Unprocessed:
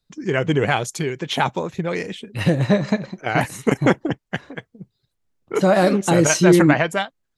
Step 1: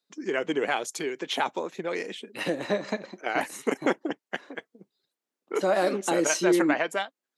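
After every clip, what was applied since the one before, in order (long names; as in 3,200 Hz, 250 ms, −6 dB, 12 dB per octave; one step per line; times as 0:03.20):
high-pass filter 260 Hz 24 dB per octave
in parallel at −1 dB: downward compressor, threshold −26 dBFS, peak gain reduction 15 dB
on the sum: level −9 dB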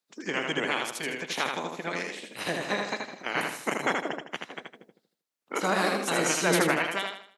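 ceiling on every frequency bin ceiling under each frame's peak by 16 dB
on a send: repeating echo 79 ms, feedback 37%, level −4 dB
on the sum: level −3 dB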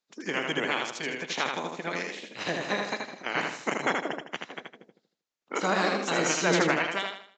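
downsampling to 16,000 Hz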